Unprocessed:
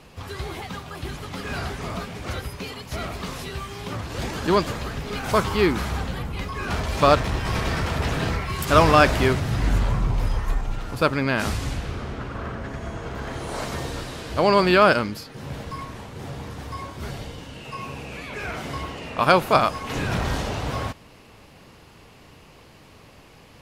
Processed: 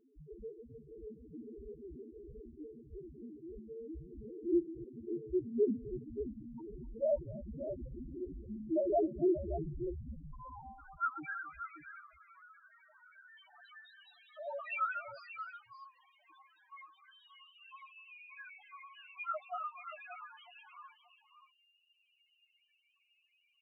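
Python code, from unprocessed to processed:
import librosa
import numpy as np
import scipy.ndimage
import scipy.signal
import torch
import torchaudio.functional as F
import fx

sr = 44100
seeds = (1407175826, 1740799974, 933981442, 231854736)

p1 = fx.notch_comb(x, sr, f0_hz=170.0)
p2 = fx.filter_sweep_bandpass(p1, sr, from_hz=340.0, to_hz=3200.0, start_s=9.54, end_s=12.25, q=0.91)
p3 = fx.pitch_keep_formants(p2, sr, semitones=-10.0)
p4 = fx.spec_topn(p3, sr, count=1)
p5 = p4 + fx.echo_multitap(p4, sr, ms=(258, 580), db=(-19.0, -10.0), dry=0)
y = p5 * librosa.db_to_amplitude(1.5)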